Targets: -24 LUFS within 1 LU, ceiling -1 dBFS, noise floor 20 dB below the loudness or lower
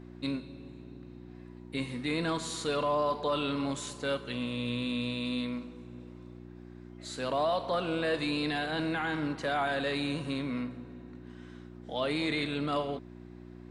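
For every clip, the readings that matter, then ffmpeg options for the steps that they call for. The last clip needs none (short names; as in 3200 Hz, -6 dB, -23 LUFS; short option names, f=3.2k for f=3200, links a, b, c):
hum 60 Hz; harmonics up to 360 Hz; hum level -45 dBFS; loudness -32.5 LUFS; peak -20.0 dBFS; loudness target -24.0 LUFS
-> -af "bandreject=f=60:t=h:w=4,bandreject=f=120:t=h:w=4,bandreject=f=180:t=h:w=4,bandreject=f=240:t=h:w=4,bandreject=f=300:t=h:w=4,bandreject=f=360:t=h:w=4"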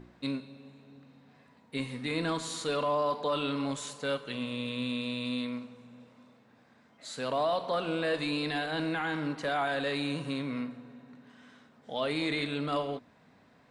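hum none; loudness -32.5 LUFS; peak -20.5 dBFS; loudness target -24.0 LUFS
-> -af "volume=8.5dB"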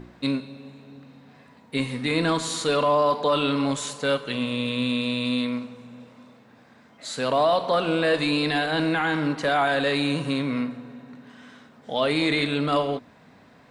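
loudness -24.0 LUFS; peak -12.0 dBFS; noise floor -53 dBFS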